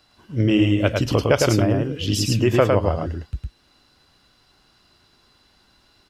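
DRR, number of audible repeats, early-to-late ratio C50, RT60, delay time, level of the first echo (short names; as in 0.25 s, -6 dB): none, 1, none, none, 0.107 s, -3.0 dB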